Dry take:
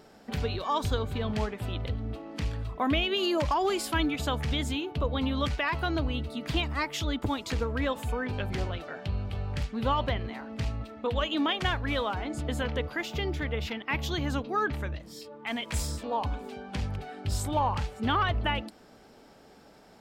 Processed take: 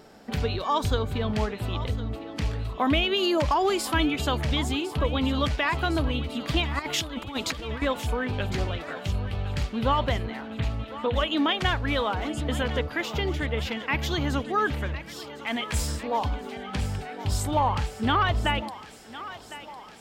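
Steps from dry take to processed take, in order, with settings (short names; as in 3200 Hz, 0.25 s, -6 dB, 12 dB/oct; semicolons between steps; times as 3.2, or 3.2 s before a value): 6.79–7.82 negative-ratio compressor -34 dBFS, ratio -0.5; 10.5–11.28 steep low-pass 4000 Hz 96 dB/oct; thinning echo 1.056 s, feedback 70%, high-pass 460 Hz, level -14 dB; gain +3.5 dB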